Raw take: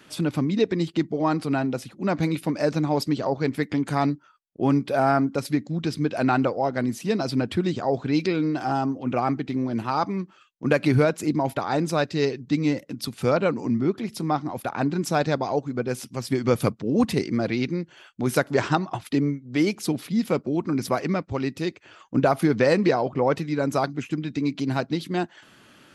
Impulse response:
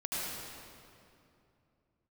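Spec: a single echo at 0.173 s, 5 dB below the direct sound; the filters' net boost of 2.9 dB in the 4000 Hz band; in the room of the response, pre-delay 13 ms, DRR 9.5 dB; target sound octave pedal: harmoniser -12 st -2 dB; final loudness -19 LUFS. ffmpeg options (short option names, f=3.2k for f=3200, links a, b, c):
-filter_complex "[0:a]equalizer=f=4k:t=o:g=3.5,aecho=1:1:173:0.562,asplit=2[a][b];[1:a]atrim=start_sample=2205,adelay=13[c];[b][c]afir=irnorm=-1:irlink=0,volume=-14.5dB[d];[a][d]amix=inputs=2:normalize=0,asplit=2[e][f];[f]asetrate=22050,aresample=44100,atempo=2,volume=-2dB[g];[e][g]amix=inputs=2:normalize=0,volume=2.5dB"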